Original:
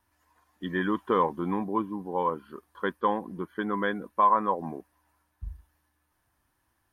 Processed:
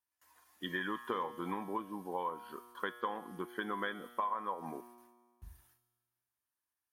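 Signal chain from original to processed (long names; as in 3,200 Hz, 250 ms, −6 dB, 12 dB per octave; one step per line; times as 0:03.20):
noise gate with hold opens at −59 dBFS
spectral tilt +3 dB per octave
downward compressor 6 to 1, threshold −32 dBFS, peak gain reduction 14 dB
tuned comb filter 120 Hz, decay 1.6 s, mix 70%
level +8 dB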